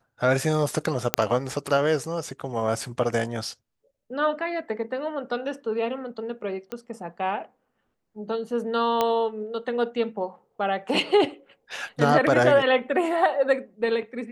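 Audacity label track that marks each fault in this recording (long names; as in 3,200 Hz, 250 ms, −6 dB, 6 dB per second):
1.140000	1.140000	click −1 dBFS
6.720000	6.720000	click −19 dBFS
9.010000	9.010000	click −9 dBFS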